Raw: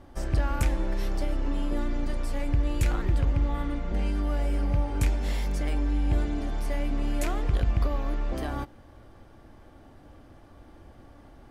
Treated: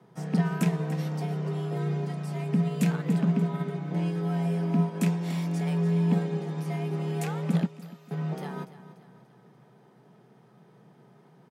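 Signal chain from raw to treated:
0:07.66–0:08.11: first difference
frequency shifter +120 Hz
repeating echo 291 ms, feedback 46%, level −13 dB
expander for the loud parts 1.5 to 1, over −33 dBFS

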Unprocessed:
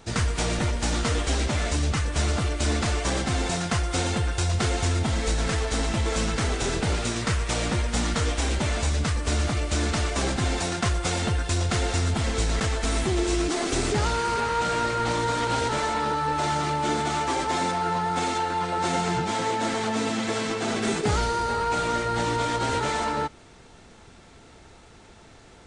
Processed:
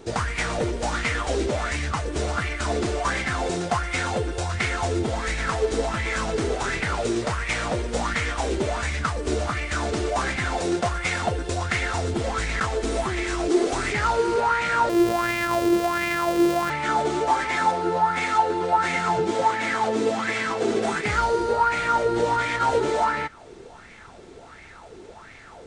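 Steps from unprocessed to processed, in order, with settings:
0:14.89–0:16.70: samples sorted by size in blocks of 128 samples
in parallel at −1 dB: downward compressor, threshold −36 dBFS, peak gain reduction 15 dB
on the sum: auto-filter bell 1.4 Hz 360–2,200 Hz +17 dB
level −6 dB

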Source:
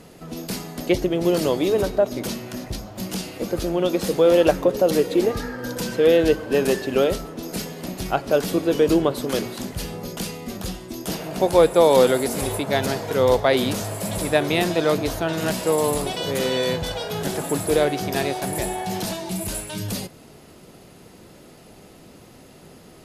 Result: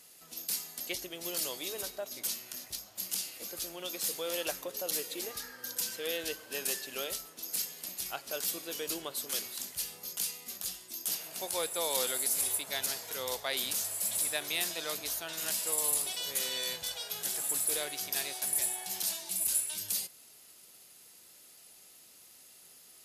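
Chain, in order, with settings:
first-order pre-emphasis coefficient 0.97

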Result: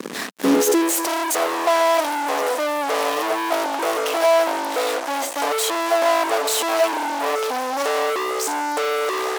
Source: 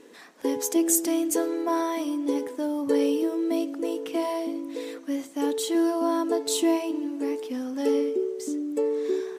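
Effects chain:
fuzz pedal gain 48 dB, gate −48 dBFS
high-pass filter sweep 200 Hz → 680 Hz, 0:00.39–0:01.09
level −6 dB

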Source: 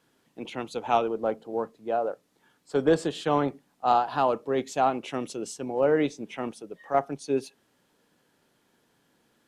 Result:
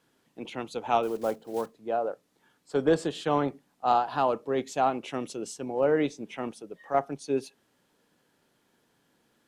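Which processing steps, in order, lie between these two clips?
0:01.03–0:01.73: one scale factor per block 5 bits
level −1.5 dB

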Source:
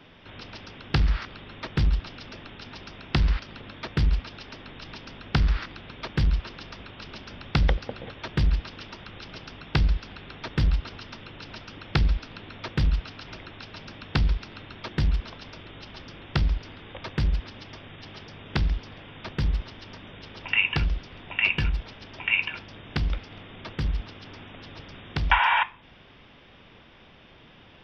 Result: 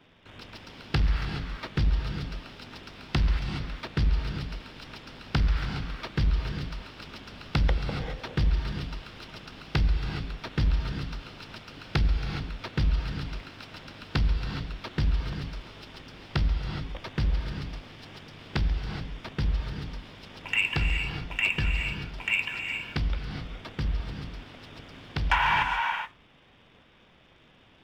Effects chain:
leveller curve on the samples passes 1
reverb whose tail is shaped and stops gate 450 ms rising, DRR 4 dB
level −6 dB

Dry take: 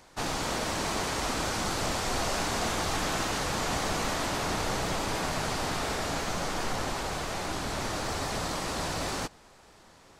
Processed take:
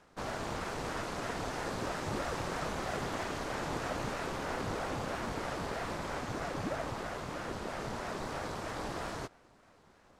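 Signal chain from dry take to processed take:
high-shelf EQ 2,200 Hz −9.5 dB
ring modulator whose carrier an LFO sweeps 410 Hz, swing 75%, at 3.1 Hz
level −2 dB

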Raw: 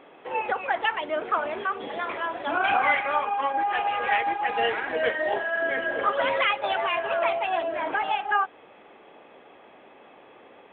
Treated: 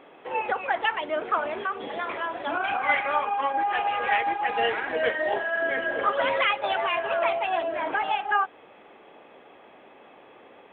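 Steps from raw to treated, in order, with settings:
0:01.49–0:02.89: downward compressor 5 to 1, threshold −24 dBFS, peak gain reduction 6 dB

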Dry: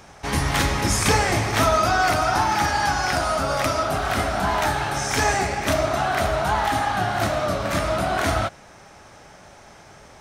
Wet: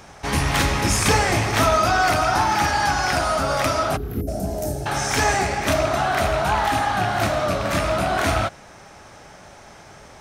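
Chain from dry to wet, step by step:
loose part that buzzes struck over −24 dBFS, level −20 dBFS
0:03.96–0:04.28: gain on a spectral selection 500–11,000 Hz −24 dB
in parallel at −10.5 dB: soft clipping −23.5 dBFS, distortion −9 dB
0:04.21–0:04.86: on the sum: drawn EQ curve 620 Hz 0 dB, 980 Hz −27 dB, 3,700 Hz −21 dB, 5,300 Hz −6 dB, 13,000 Hz +4 dB

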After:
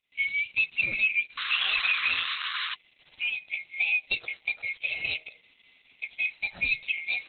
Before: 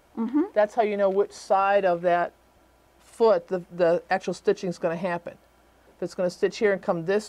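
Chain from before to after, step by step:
neighbouring bands swapped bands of 2,000 Hz
noise gate with hold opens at −49 dBFS
parametric band 2,000 Hz −4.5 dB 2.2 octaves
hum removal 156.6 Hz, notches 6
harmonic and percussive parts rebalanced percussive −5 dB
high-shelf EQ 3,000 Hz +9 dB
downward compressor 16 to 1, threshold −24 dBFS, peak gain reduction 10 dB
0:01.37–0:02.75: sound drawn into the spectrogram noise 1,000–7,600 Hz −29 dBFS
0:04.01–0:06.49: noise that follows the level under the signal 33 dB
level +2.5 dB
Opus 8 kbit/s 48,000 Hz

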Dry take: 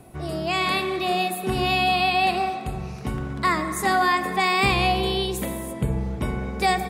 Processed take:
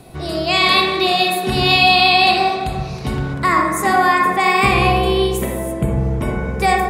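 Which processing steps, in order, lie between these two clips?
parametric band 4,100 Hz +9.5 dB 0.77 octaves, from 0:03.34 −5.5 dB
convolution reverb RT60 0.80 s, pre-delay 43 ms, DRR 1.5 dB
level +5 dB

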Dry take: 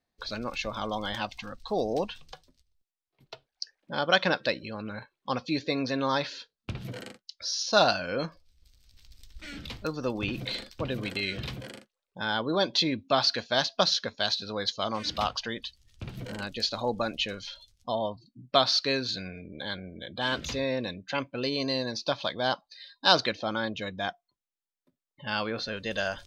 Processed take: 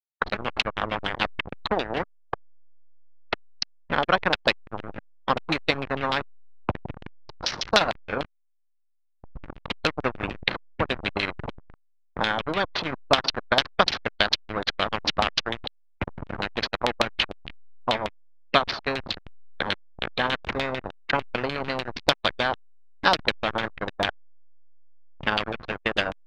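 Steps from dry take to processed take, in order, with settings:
parametric band 120 Hz −4.5 dB 0.22 octaves
transient designer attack +12 dB, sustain −11 dB
reversed playback
upward compression, threshold −43 dBFS
reversed playback
slack as between gear wheels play −23.5 dBFS
auto-filter low-pass saw down 6.7 Hz 730–3,500 Hz
every bin compressed towards the loudest bin 2 to 1
level −6 dB

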